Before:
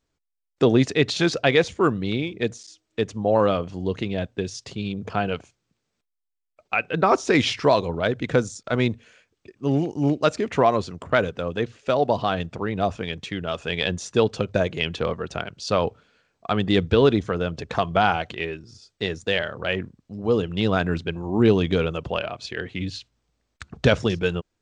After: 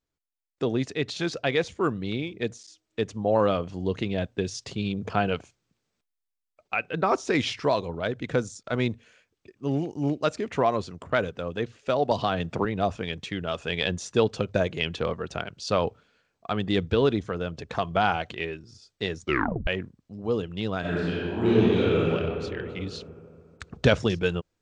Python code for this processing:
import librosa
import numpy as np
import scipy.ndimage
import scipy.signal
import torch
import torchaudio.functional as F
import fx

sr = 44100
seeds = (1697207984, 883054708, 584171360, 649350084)

y = fx.band_squash(x, sr, depth_pct=100, at=(12.11, 12.65))
y = fx.reverb_throw(y, sr, start_s=20.8, length_s=1.29, rt60_s=2.2, drr_db=-10.0)
y = fx.edit(y, sr, fx.tape_stop(start_s=19.2, length_s=0.47), tone=tone)
y = fx.rider(y, sr, range_db=10, speed_s=2.0)
y = y * librosa.db_to_amplitude(-7.5)